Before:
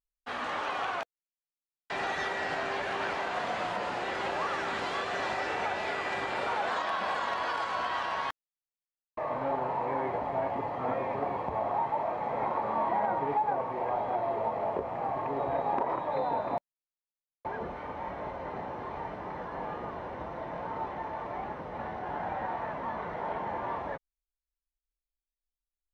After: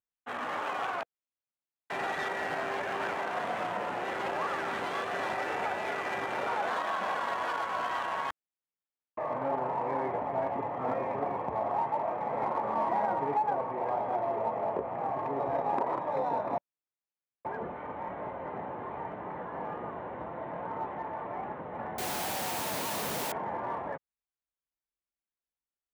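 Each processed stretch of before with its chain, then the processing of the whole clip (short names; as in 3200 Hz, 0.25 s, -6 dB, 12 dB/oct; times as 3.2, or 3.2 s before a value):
21.98–23.32 Schmitt trigger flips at -44 dBFS + requantised 6-bit, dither triangular
whole clip: Wiener smoothing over 9 samples; HPF 100 Hz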